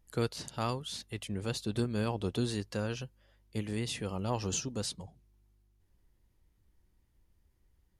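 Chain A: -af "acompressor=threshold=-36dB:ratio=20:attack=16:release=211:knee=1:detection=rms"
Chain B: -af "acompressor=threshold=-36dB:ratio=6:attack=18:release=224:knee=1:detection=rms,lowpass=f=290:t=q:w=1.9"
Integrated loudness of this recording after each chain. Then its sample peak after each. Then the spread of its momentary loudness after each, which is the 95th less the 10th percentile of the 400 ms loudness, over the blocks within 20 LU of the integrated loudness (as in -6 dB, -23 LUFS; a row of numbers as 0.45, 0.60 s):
-42.0, -41.0 LUFS; -23.5, -25.0 dBFS; 5, 8 LU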